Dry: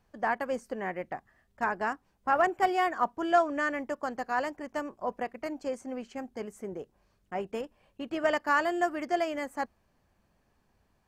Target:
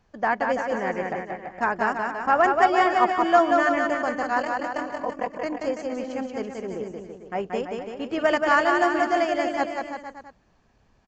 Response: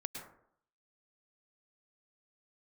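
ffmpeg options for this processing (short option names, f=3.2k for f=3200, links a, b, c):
-filter_complex "[0:a]asettb=1/sr,asplit=3[a][b][c];[a]atrim=end=4.384[d];[b]atrim=start=4.38:end=5.43,asetpts=PTS-STARTPTS,afade=t=in:d=0.004:c=qsin,afade=t=out:st=1.046:d=0.004:c=qsin,aeval=exprs='val(0)*sin(2*PI*20*n/s)':c=same[e];[c]atrim=start=5.426[f];[d][e]acrossfade=d=0.004:c1=hsin:c2=qsin[g];[g][f]acrossfade=d=0.004:c1=qsin:c2=hsin,aresample=16000,aresample=44100,aecho=1:1:180|333|463|573.6|667.6:0.631|0.398|0.251|0.158|0.1,volume=5.5dB"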